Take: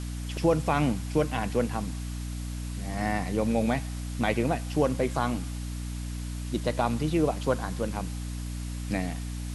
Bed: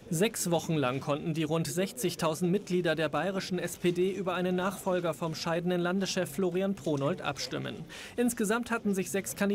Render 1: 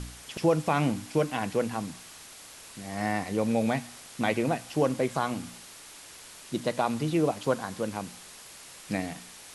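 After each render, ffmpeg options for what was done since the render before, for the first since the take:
-af "bandreject=f=60:t=h:w=4,bandreject=f=120:t=h:w=4,bandreject=f=180:t=h:w=4,bandreject=f=240:t=h:w=4,bandreject=f=300:t=h:w=4"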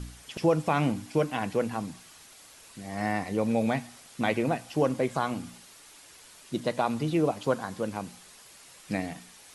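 -af "afftdn=nr=6:nf=-48"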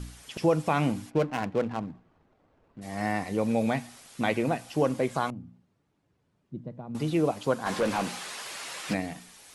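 -filter_complex "[0:a]asplit=3[s0][s1][s2];[s0]afade=t=out:st=1.09:d=0.02[s3];[s1]adynamicsmooth=sensitivity=6.5:basefreq=540,afade=t=in:st=1.09:d=0.02,afade=t=out:st=2.81:d=0.02[s4];[s2]afade=t=in:st=2.81:d=0.02[s5];[s3][s4][s5]amix=inputs=3:normalize=0,asettb=1/sr,asplit=3[s6][s7][s8];[s6]atrim=end=5.304[s9];[s7]atrim=start=5.3:end=6.95,asetpts=PTS-STARTPTS,afade=t=in:d=0.004:c=qsin,afade=t=out:st=1.646:d=0.004:c=qsin,bandpass=f=130:t=q:w=1.5[s10];[s8]atrim=start=6.946[s11];[s9][s10]acrossfade=d=0.004:c1=hsin:c2=qsin[s12];[s12][s11]acrossfade=d=0.004:c1=qsin:c2=hsin,asplit=3[s13][s14][s15];[s13]afade=t=out:st=7.65:d=0.02[s16];[s14]asplit=2[s17][s18];[s18]highpass=f=720:p=1,volume=17.8,asoftclip=type=tanh:threshold=0.133[s19];[s17][s19]amix=inputs=2:normalize=0,lowpass=f=2800:p=1,volume=0.501,afade=t=in:st=7.65:d=0.02,afade=t=out:st=8.93:d=0.02[s20];[s15]afade=t=in:st=8.93:d=0.02[s21];[s16][s20][s21]amix=inputs=3:normalize=0"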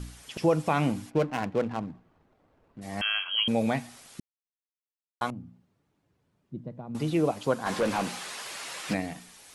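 -filter_complex "[0:a]asettb=1/sr,asplit=3[s0][s1][s2];[s0]atrim=end=3.014[s3];[s1]atrim=start=3.01:end=3.48,asetpts=PTS-STARTPTS,afade=t=in:d=0.004:c=qsin,afade=t=out:st=0.466:d=0.004:c=qsin,lowpass=f=2900:t=q:w=0.5098,lowpass=f=2900:t=q:w=0.6013,lowpass=f=2900:t=q:w=0.9,lowpass=f=2900:t=q:w=2.563,afreqshift=-3400[s4];[s2]atrim=start=3.476[s5];[s3][s4]acrossfade=d=0.004:c1=hsin:c2=qsin[s6];[s6][s5]acrossfade=d=0.004:c1=qsin:c2=hsin,asplit=3[s7][s8][s9];[s7]atrim=end=4.2,asetpts=PTS-STARTPTS,afade=t=out:st=4.196:d=0.004:c=hsin[s10];[s8]atrim=start=4.2:end=5.21,asetpts=PTS-STARTPTS,volume=0[s11];[s9]atrim=start=5.21,asetpts=PTS-STARTPTS,afade=t=in:d=0.004:c=hsin[s12];[s10][s11][s12]concat=n=3:v=0:a=1"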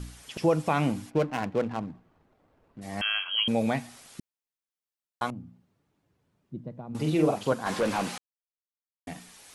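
-filter_complex "[0:a]asettb=1/sr,asplit=3[s0][s1][s2];[s0]atrim=end=6.884[s3];[s1]atrim=start=6.88:end=7.53,asetpts=PTS-STARTPTS,afade=t=in:d=0.004:c=qsin,afade=t=out:st=0.646:d=0.004:c=qsin,asplit=2[s4][s5];[s5]adelay=45,volume=0.631[s6];[s4][s6]amix=inputs=2:normalize=0,atrim=end_sample=28665[s7];[s2]atrim=start=7.526[s8];[s3][s7]acrossfade=d=0.004:c1=hsin:c2=qsin[s9];[s9][s8]acrossfade=d=0.004:c1=qsin:c2=hsin,asplit=3[s10][s11][s12];[s10]atrim=end=8.18,asetpts=PTS-STARTPTS,afade=t=out:st=8.176:d=0.004:c=hsin[s13];[s11]atrim=start=8.18:end=9.07,asetpts=PTS-STARTPTS,volume=0[s14];[s12]atrim=start=9.07,asetpts=PTS-STARTPTS,afade=t=in:d=0.004:c=hsin[s15];[s13][s14][s15]concat=n=3:v=0:a=1"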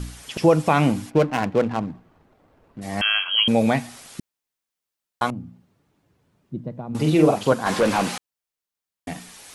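-af "volume=2.37"

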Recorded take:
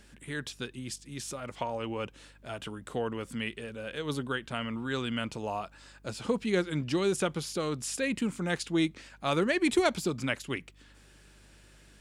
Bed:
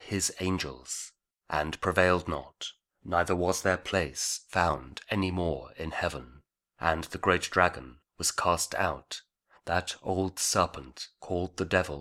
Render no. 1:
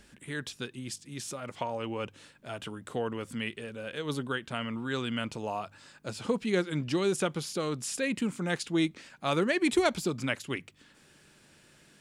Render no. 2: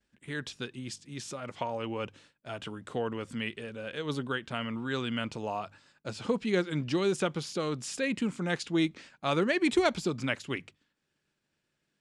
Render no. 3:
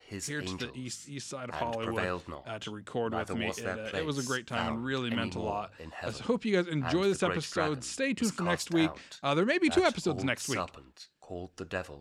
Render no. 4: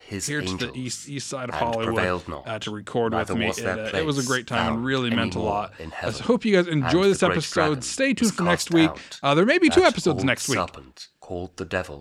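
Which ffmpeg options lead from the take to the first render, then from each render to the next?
-af "bandreject=f=50:t=h:w=4,bandreject=f=100:t=h:w=4"
-af "agate=range=0.0224:threshold=0.00501:ratio=3:detection=peak,lowpass=7100"
-filter_complex "[1:a]volume=0.335[s0];[0:a][s0]amix=inputs=2:normalize=0"
-af "volume=2.82"

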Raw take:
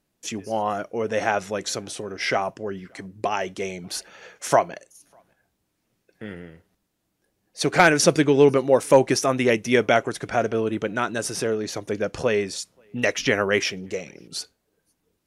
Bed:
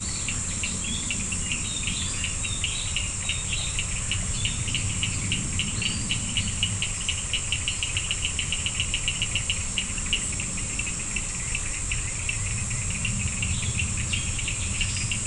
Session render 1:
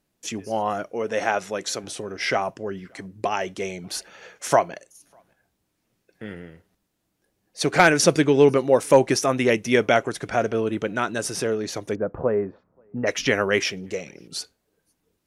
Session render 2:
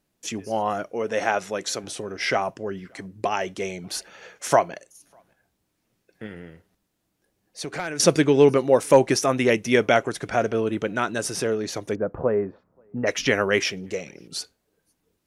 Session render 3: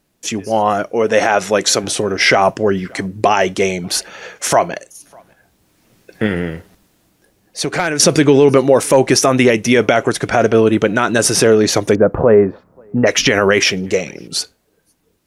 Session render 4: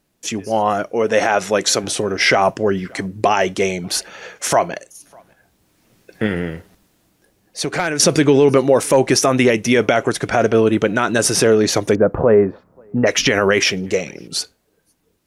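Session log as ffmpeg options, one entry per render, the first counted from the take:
-filter_complex "[0:a]asettb=1/sr,asplit=3[s0][s1][s2];[s0]atrim=end=0.934[s3];[s1]atrim=start=0.93:end=1.84,asetpts=PTS-STARTPTS,afade=t=in:d=0.004:c=qsin,afade=t=out:st=0.906:d=0.004:c=qsin,highpass=f=210:p=1[s4];[s2]atrim=start=1.836[s5];[s3][s4]acrossfade=d=0.004:c1=hsin:c2=qsin[s6];[s6][s5]acrossfade=d=0.004:c1=qsin:c2=hsin,asplit=3[s7][s8][s9];[s7]afade=t=out:st=11.94:d=0.02[s10];[s8]lowpass=f=1300:w=0.5412,lowpass=f=1300:w=1.3066,afade=t=in:st=11.94:d=0.02,afade=t=out:st=13.06:d=0.02[s11];[s9]afade=t=in:st=13.06:d=0.02[s12];[s10][s11][s12]amix=inputs=3:normalize=0"
-filter_complex "[0:a]asettb=1/sr,asplit=3[s0][s1][s2];[s0]atrim=end=6.264[s3];[s1]atrim=start=6.26:end=8,asetpts=PTS-STARTPTS,afade=t=in:d=0.004:c=qsin,afade=t=out:st=1.736:d=0.004:c=qsin,acompressor=threshold=0.0224:ratio=2.5:attack=3.2:release=140:knee=1:detection=peak[s4];[s2]atrim=start=7.996[s5];[s3][s4]acrossfade=d=0.004:c1=hsin:c2=qsin[s6];[s6][s5]acrossfade=d=0.004:c1=qsin:c2=hsin"
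-af "dynaudnorm=f=130:g=17:m=3.76,alimiter=level_in=2.99:limit=0.891:release=50:level=0:latency=1"
-af "volume=0.75"

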